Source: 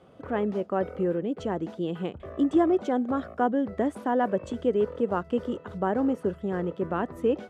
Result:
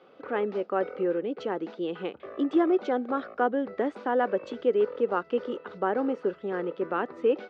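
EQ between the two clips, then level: speaker cabinet 450–4500 Hz, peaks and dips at 660 Hz -9 dB, 1000 Hz -6 dB, 1800 Hz -4 dB, 3200 Hz -5 dB; +5.5 dB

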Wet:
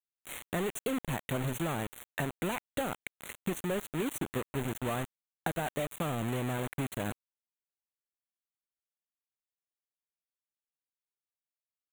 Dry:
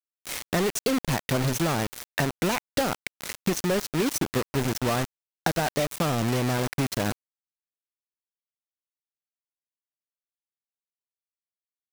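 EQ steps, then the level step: Butterworth band-stop 5100 Hz, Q 1.5; -8.0 dB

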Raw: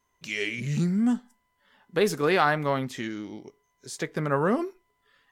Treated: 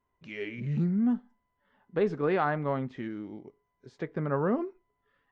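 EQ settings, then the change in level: tape spacing loss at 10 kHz 42 dB; -1.5 dB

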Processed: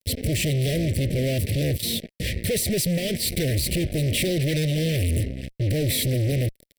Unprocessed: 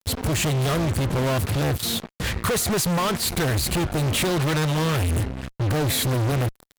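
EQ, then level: Chebyshev band-stop 590–2000 Hz, order 3; notch 6700 Hz, Q 5.3; 0.0 dB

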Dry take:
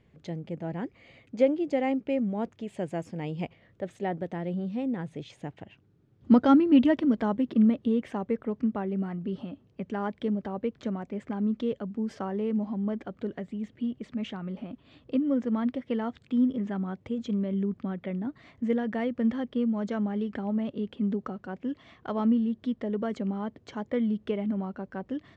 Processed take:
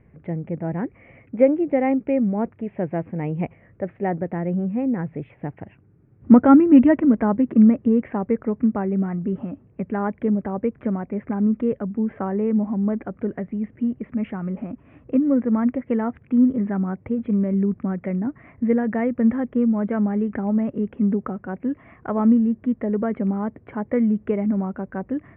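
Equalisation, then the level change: steep low-pass 2400 Hz 48 dB/oct; air absorption 84 m; low shelf 170 Hz +4 dB; +6.5 dB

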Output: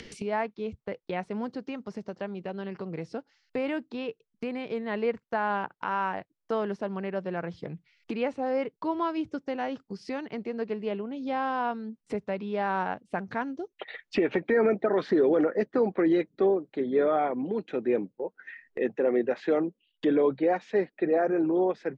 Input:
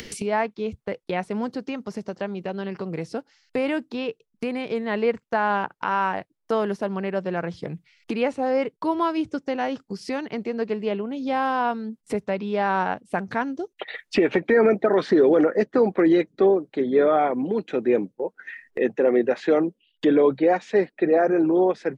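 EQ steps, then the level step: air absorption 78 m; -5.5 dB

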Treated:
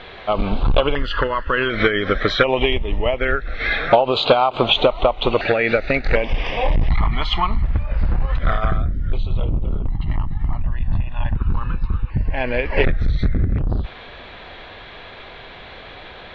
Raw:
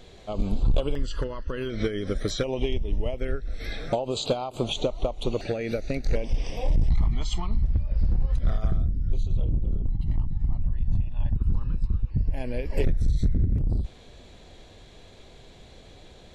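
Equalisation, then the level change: LPF 3900 Hz 24 dB/oct; bell 1300 Hz +14 dB 2.4 oct; bell 2600 Hz +5.5 dB 2.6 oct; +4.0 dB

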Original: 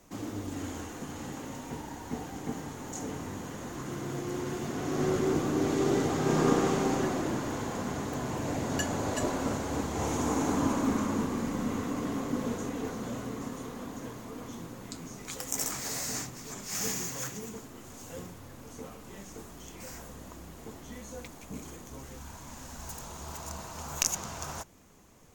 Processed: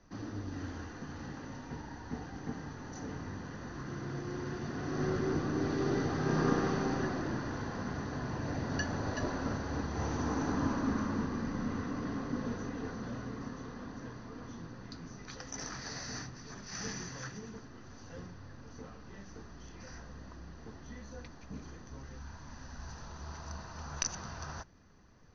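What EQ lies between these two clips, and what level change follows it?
rippled Chebyshev low-pass 6200 Hz, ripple 9 dB; low shelf 220 Hz +10.5 dB; notch 2200 Hz, Q 7.9; 0.0 dB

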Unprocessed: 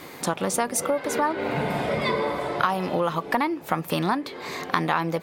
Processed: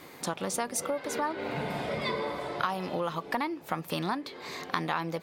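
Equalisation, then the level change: dynamic EQ 4500 Hz, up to +4 dB, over -45 dBFS, Q 1; -7.5 dB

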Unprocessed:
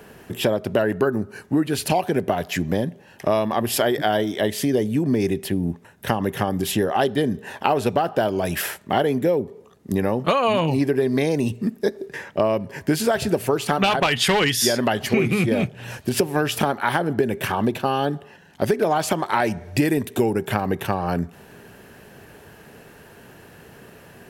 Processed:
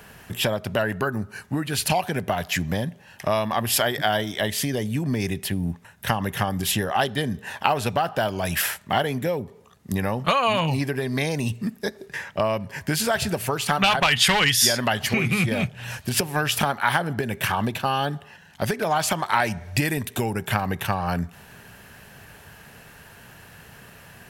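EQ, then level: bell 360 Hz -12.5 dB 1.6 oct; +3.0 dB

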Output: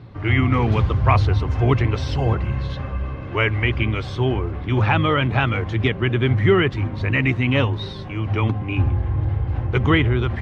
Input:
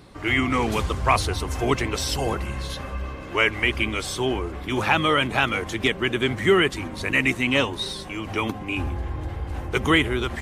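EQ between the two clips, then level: air absorption 250 m; bell 110 Hz +15 dB 0.77 oct; +1.5 dB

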